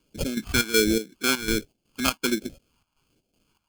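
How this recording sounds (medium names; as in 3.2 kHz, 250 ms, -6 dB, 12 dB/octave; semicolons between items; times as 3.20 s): aliases and images of a low sample rate 1.9 kHz, jitter 0%; chopped level 2.7 Hz, depth 65%, duty 65%; phasing stages 2, 1.3 Hz, lowest notch 460–1100 Hz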